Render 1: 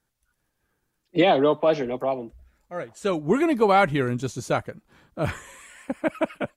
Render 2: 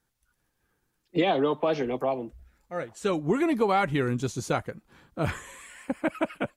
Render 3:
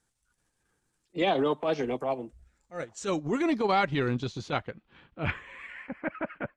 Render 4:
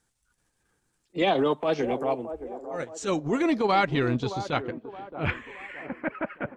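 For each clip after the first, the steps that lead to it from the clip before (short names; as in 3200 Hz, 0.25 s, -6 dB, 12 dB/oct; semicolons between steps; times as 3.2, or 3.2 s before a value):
notch 610 Hz, Q 12; compressor 2.5:1, threshold -22 dBFS, peak gain reduction 6 dB
transient shaper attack -10 dB, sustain -6 dB; low-pass sweep 8600 Hz -> 1800 Hz, 2.35–6.22
band-limited delay 0.62 s, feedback 42%, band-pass 520 Hz, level -10 dB; gain +2.5 dB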